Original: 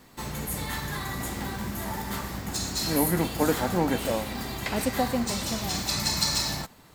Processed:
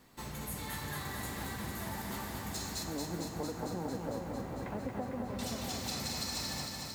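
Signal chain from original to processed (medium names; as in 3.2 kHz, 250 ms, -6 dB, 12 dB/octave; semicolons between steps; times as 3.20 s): 2.83–5.39 s: low-pass 1.2 kHz 12 dB/octave; compression, threshold -28 dBFS, peak gain reduction 9.5 dB; bit-crushed delay 226 ms, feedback 80%, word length 9-bit, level -4.5 dB; trim -8 dB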